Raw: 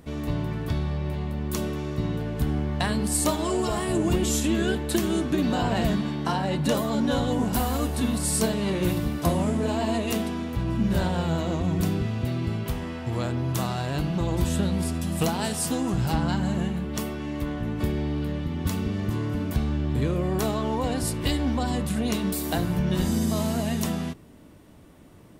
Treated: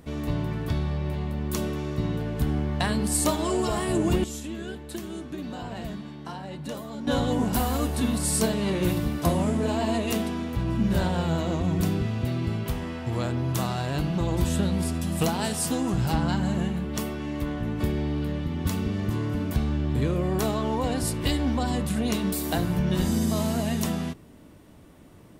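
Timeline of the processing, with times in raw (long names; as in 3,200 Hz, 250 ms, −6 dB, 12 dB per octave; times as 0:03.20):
0:04.24–0:07.07: clip gain −11 dB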